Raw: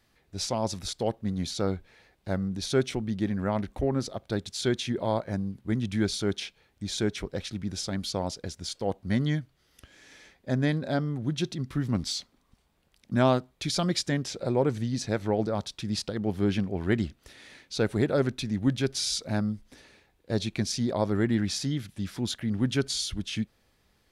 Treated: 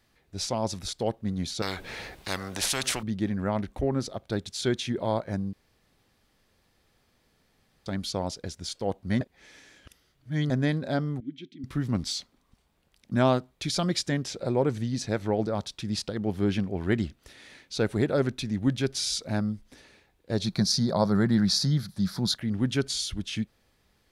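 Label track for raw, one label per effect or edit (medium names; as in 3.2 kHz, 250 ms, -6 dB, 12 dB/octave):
1.620000	3.030000	spectrum-flattening compressor 4:1
5.530000	7.860000	room tone
9.210000	10.500000	reverse
11.200000	11.640000	vowel filter i
20.440000	22.370000	FFT filter 100 Hz 0 dB, 180 Hz +11 dB, 280 Hz -4 dB, 510 Hz +2 dB, 930 Hz +4 dB, 1.4 kHz +5 dB, 2.8 kHz -10 dB, 4.3 kHz +11 dB, 7.6 kHz -1 dB, 11 kHz +5 dB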